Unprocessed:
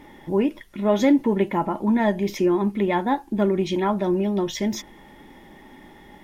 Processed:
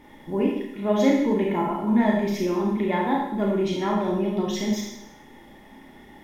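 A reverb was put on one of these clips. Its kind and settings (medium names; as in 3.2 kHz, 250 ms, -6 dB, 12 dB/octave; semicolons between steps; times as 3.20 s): Schroeder reverb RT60 0.81 s, combs from 26 ms, DRR -2 dB; trim -5 dB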